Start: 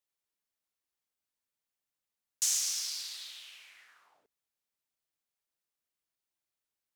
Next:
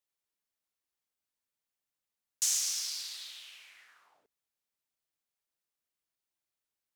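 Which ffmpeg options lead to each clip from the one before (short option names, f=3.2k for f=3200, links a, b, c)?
-af anull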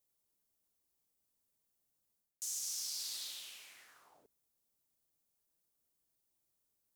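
-af "alimiter=limit=-22dB:level=0:latency=1,equalizer=f=2.1k:w=0.41:g=-13.5,areverse,acompressor=threshold=-49dB:ratio=5,areverse,volume=10dB"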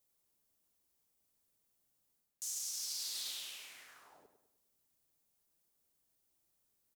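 -filter_complex "[0:a]alimiter=level_in=10.5dB:limit=-24dB:level=0:latency=1:release=27,volume=-10.5dB,asplit=2[a][b];[b]adelay=101,lowpass=f=4.4k:p=1,volume=-8.5dB,asplit=2[c][d];[d]adelay=101,lowpass=f=4.4k:p=1,volume=0.46,asplit=2[e][f];[f]adelay=101,lowpass=f=4.4k:p=1,volume=0.46,asplit=2[g][h];[h]adelay=101,lowpass=f=4.4k:p=1,volume=0.46,asplit=2[i][j];[j]adelay=101,lowpass=f=4.4k:p=1,volume=0.46[k];[a][c][e][g][i][k]amix=inputs=6:normalize=0,volume=3dB"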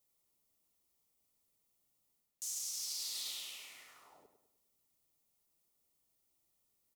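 -af "asuperstop=centerf=1600:order=4:qfactor=5.9"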